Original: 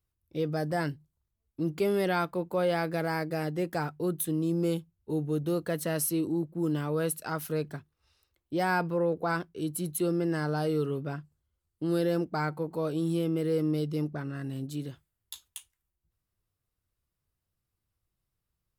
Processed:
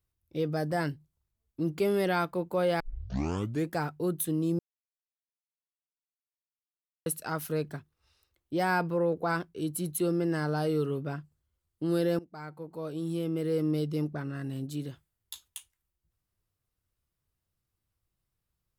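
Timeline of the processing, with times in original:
2.8 tape start 0.92 s
4.59–7.06 mute
12.19–13.74 fade in, from -19 dB

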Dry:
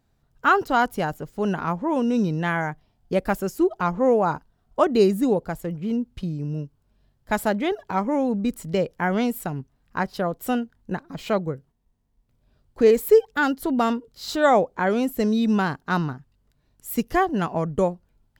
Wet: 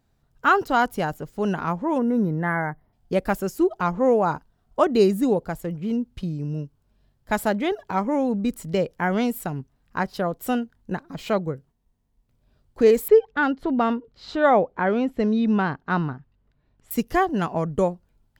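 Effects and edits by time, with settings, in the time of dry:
1.98–2.93 spectral gain 2200–10000 Hz -18 dB
13.08–16.91 LPF 2900 Hz

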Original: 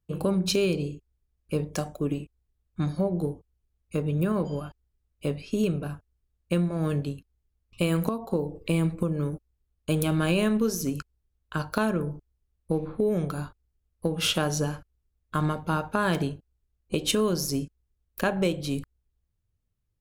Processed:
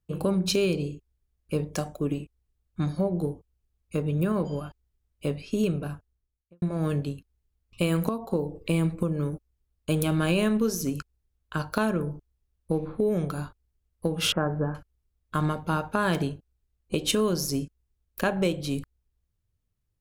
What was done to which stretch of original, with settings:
5.91–6.62 studio fade out
14.32–14.75 steep low-pass 1700 Hz

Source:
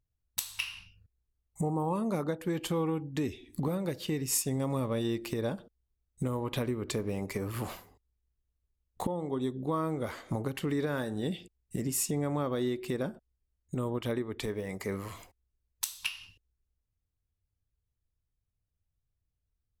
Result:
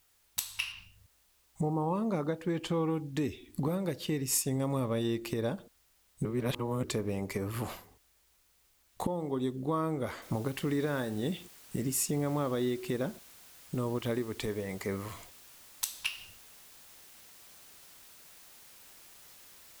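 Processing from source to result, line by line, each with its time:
0.72–2.9 air absorption 66 m
6.25–6.83 reverse
10.22 noise floor step -69 dB -55 dB

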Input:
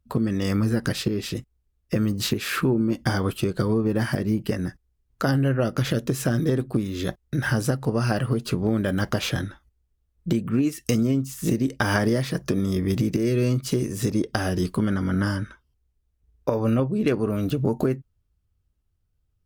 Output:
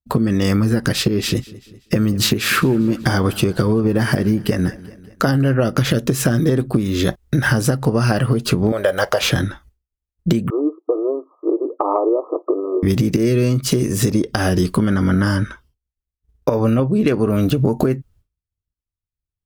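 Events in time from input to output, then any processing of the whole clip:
1.08–5.54 feedback echo 0.194 s, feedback 56%, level -21.5 dB
8.72–9.21 resonant low shelf 370 Hz -12.5 dB, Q 3
10.5–12.83 brick-wall FIR band-pass 300–1300 Hz
whole clip: expander -53 dBFS; compressor, threshold -24 dBFS; maximiser +13.5 dB; gain -2 dB

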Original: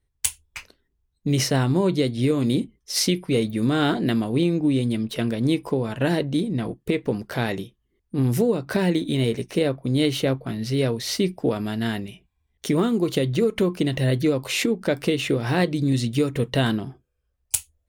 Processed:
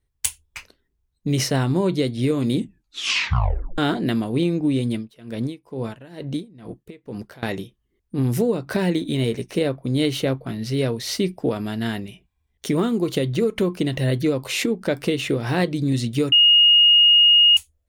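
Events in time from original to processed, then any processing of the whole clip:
2.55 tape stop 1.23 s
4.94–7.43 dB-linear tremolo 2.2 Hz, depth 23 dB
16.32–17.57 bleep 2860 Hz -10 dBFS

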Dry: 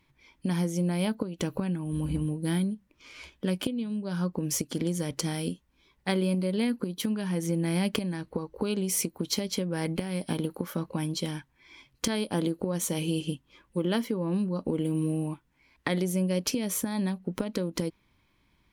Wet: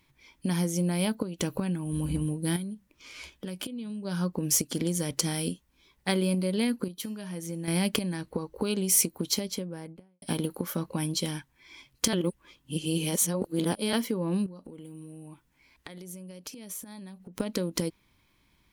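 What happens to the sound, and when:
2.56–4.05 compressor 3:1, threshold -35 dBFS
6.88–7.68 resonator 620 Hz, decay 0.55 s
9.14–10.22 studio fade out
12.13–13.93 reverse
14.46–17.4 compressor 10:1, threshold -41 dBFS
whole clip: high shelf 4600 Hz +8 dB

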